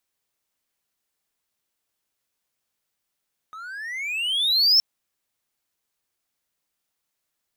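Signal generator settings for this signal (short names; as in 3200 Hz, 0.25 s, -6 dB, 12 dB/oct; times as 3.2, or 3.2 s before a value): gliding synth tone triangle, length 1.27 s, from 1250 Hz, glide +25.5 st, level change +23.5 dB, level -10.5 dB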